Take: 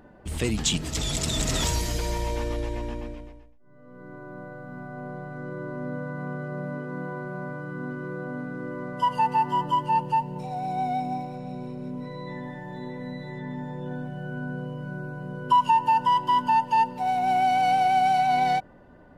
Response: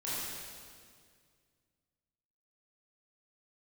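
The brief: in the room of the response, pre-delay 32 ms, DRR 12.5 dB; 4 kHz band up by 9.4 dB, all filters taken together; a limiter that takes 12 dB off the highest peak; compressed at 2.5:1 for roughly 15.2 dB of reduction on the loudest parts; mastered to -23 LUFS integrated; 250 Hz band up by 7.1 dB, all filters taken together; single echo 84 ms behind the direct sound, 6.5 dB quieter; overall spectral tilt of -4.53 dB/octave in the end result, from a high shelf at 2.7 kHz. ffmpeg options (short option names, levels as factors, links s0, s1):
-filter_complex "[0:a]equalizer=f=250:t=o:g=8.5,highshelf=f=2700:g=8.5,equalizer=f=4000:t=o:g=5,acompressor=threshold=0.0141:ratio=2.5,alimiter=level_in=2.11:limit=0.0631:level=0:latency=1,volume=0.473,aecho=1:1:84:0.473,asplit=2[s0][s1];[1:a]atrim=start_sample=2205,adelay=32[s2];[s1][s2]afir=irnorm=-1:irlink=0,volume=0.141[s3];[s0][s3]amix=inputs=2:normalize=0,volume=5.01"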